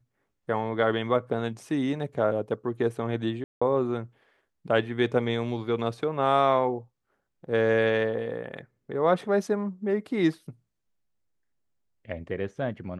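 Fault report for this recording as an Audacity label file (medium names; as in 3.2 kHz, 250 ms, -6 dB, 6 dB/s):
3.440000	3.620000	dropout 175 ms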